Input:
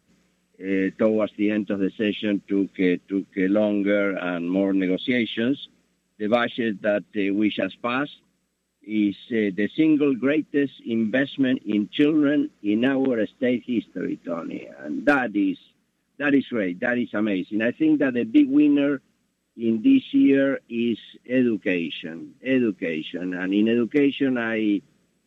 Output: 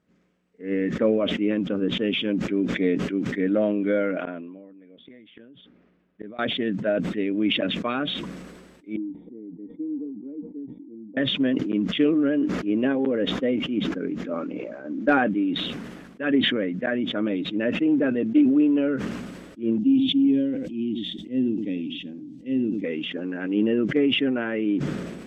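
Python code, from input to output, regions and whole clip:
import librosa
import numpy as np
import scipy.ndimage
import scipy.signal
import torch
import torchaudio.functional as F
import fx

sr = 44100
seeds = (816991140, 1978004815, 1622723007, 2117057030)

y = fx.chain(x, sr, fx.lowpass(hz=2800.0, slope=12),
    fx.gate_flip(shuts_db=-22.0, range_db=-26), at=(4.25, 6.39))
y = fx.chain(y, sr, fx.formant_cascade(vowel='u'),
    fx.comb_fb(f0_hz=470.0, decay_s=0.17, harmonics='all', damping=0.0, mix_pct=70), at=(8.96, 11.17))
y = fx.chain(y, sr, fx.curve_eq(hz=(300.0, 450.0, 660.0, 1400.0, 3500.0), db=(0, -14, -9, -25, -1)),
    fx.echo_single(ms=83, db=-15.5), at=(19.78, 22.84))
y = fx.lowpass(y, sr, hz=1100.0, slope=6)
y = fx.low_shelf(y, sr, hz=170.0, db=-7.0)
y = fx.sustainer(y, sr, db_per_s=37.0)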